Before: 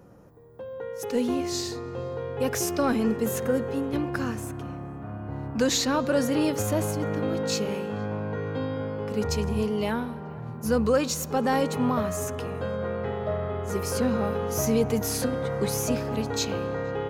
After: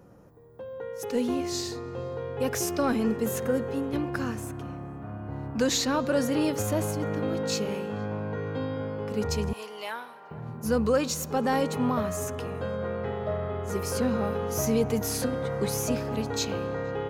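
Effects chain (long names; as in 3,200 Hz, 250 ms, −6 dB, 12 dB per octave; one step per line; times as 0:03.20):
0:09.53–0:10.31: high-pass filter 810 Hz 12 dB per octave
level −1.5 dB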